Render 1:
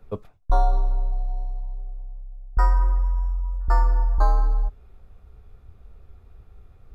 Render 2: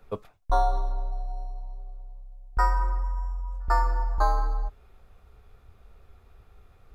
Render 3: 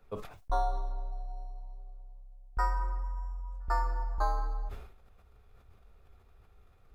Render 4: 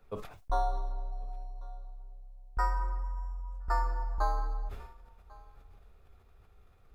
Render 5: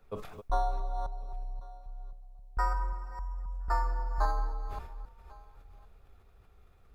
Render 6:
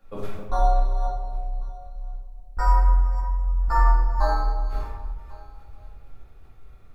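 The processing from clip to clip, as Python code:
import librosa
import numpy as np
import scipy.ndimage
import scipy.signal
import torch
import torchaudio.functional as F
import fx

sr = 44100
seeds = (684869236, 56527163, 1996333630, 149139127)

y1 = fx.low_shelf(x, sr, hz=430.0, db=-10.0)
y1 = y1 * 10.0 ** (3.5 / 20.0)
y2 = fx.sustainer(y1, sr, db_per_s=78.0)
y2 = y2 * 10.0 ** (-7.0 / 20.0)
y3 = y2 + 10.0 ** (-23.5 / 20.0) * np.pad(y2, (int(1096 * sr / 1000.0), 0))[:len(y2)]
y4 = fx.reverse_delay(y3, sr, ms=266, wet_db=-9)
y5 = fx.room_shoebox(y4, sr, seeds[0], volume_m3=270.0, walls='mixed', distance_m=2.3)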